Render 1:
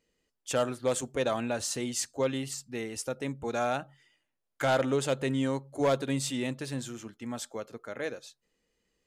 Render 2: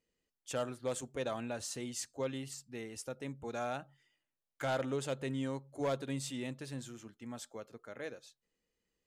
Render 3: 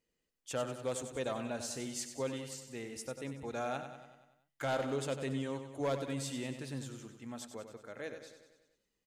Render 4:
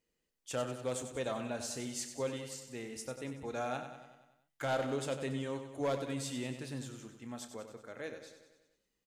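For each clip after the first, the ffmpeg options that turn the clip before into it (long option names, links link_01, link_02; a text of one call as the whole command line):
ffmpeg -i in.wav -af "equalizer=frequency=110:width_type=o:width=1.5:gain=2,volume=-8.5dB" out.wav
ffmpeg -i in.wav -af "aecho=1:1:95|190|285|380|475|570|665:0.335|0.194|0.113|0.0654|0.0379|0.022|0.0128" out.wav
ffmpeg -i in.wav -filter_complex "[0:a]asplit=2[link_01][link_02];[link_02]adelay=32,volume=-12dB[link_03];[link_01][link_03]amix=inputs=2:normalize=0" out.wav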